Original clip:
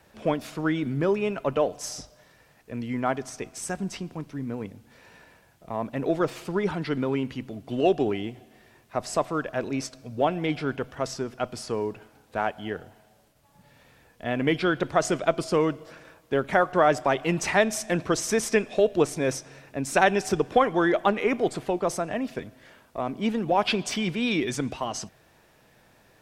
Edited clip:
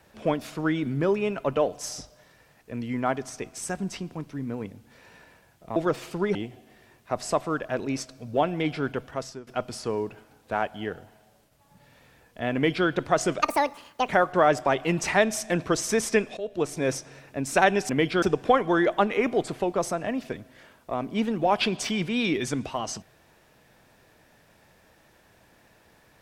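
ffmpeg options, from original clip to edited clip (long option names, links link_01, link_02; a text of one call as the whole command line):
ffmpeg -i in.wav -filter_complex "[0:a]asplit=9[link_01][link_02][link_03][link_04][link_05][link_06][link_07][link_08][link_09];[link_01]atrim=end=5.762[link_10];[link_02]atrim=start=6.098:end=6.692[link_11];[link_03]atrim=start=8.188:end=11.31,asetpts=PTS-STARTPTS,afade=type=out:start_time=2.692:duration=0.43:silence=0.16788[link_12];[link_04]atrim=start=11.31:end=15.264,asetpts=PTS-STARTPTS,afade=type=in:duration=0.004:curve=hsin:silence=0.16788[link_13];[link_05]atrim=start=15.26:end=16.48,asetpts=PTS-STARTPTS,asetrate=81144,aresample=44100,atrim=end_sample=29240,asetpts=PTS-STARTPTS[link_14];[link_06]atrim=start=16.476:end=18.77,asetpts=PTS-STARTPTS,afade=type=out:start_time=2.29:duration=0.004:curve=hsin:silence=0.141254[link_15];[link_07]atrim=start=18.77:end=20.292,asetpts=PTS-STARTPTS,afade=type=in:duration=0.49:silence=0.141254[link_16];[link_08]atrim=start=14.378:end=14.712[link_17];[link_09]atrim=start=20.288[link_18];[link_10][link_11]acrossfade=duration=0.004:curve1=hsin:curve2=hsin[link_19];[link_12][link_13]concat=n=2:v=0:a=1[link_20];[link_19][link_20]acrossfade=duration=0.004:curve1=hsin:curve2=hsin[link_21];[link_21][link_14]acrossfade=duration=0.004:curve1=hsin:curve2=hsin[link_22];[link_15][link_16]concat=n=2:v=0:a=1[link_23];[link_22][link_23]acrossfade=duration=0.004:curve1=hsin:curve2=hsin[link_24];[link_24][link_17]acrossfade=duration=0.004:curve1=hsin:curve2=hsin[link_25];[link_25][link_18]acrossfade=duration=0.004:curve1=hsin:curve2=hsin" out.wav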